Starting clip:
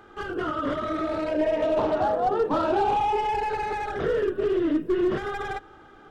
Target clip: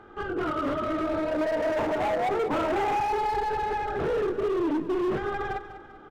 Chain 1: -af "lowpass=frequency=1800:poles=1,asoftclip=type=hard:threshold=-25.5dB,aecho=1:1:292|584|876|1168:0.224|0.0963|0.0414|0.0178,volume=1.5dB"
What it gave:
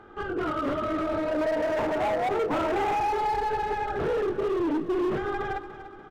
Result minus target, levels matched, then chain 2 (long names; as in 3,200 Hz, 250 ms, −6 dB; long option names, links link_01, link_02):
echo 96 ms late
-af "lowpass=frequency=1800:poles=1,asoftclip=type=hard:threshold=-25.5dB,aecho=1:1:196|392|588|784:0.224|0.0963|0.0414|0.0178,volume=1.5dB"